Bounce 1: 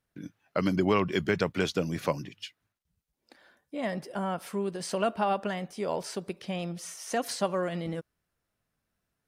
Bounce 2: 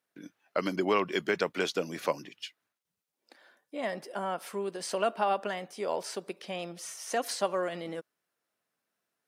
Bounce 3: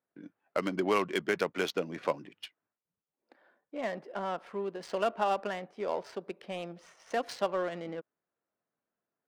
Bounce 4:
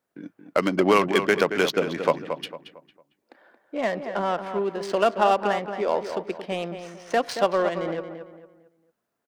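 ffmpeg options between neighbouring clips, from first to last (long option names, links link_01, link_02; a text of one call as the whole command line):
ffmpeg -i in.wav -af "highpass=320" out.wav
ffmpeg -i in.wav -af "adynamicsmooth=sensitivity=7.5:basefreq=1500,volume=-1dB" out.wav
ffmpeg -i in.wav -filter_complex "[0:a]asplit=2[link_01][link_02];[link_02]adelay=226,lowpass=frequency=2600:poles=1,volume=-8.5dB,asplit=2[link_03][link_04];[link_04]adelay=226,lowpass=frequency=2600:poles=1,volume=0.36,asplit=2[link_05][link_06];[link_06]adelay=226,lowpass=frequency=2600:poles=1,volume=0.36,asplit=2[link_07][link_08];[link_08]adelay=226,lowpass=frequency=2600:poles=1,volume=0.36[link_09];[link_01][link_03][link_05][link_07][link_09]amix=inputs=5:normalize=0,volume=9dB" out.wav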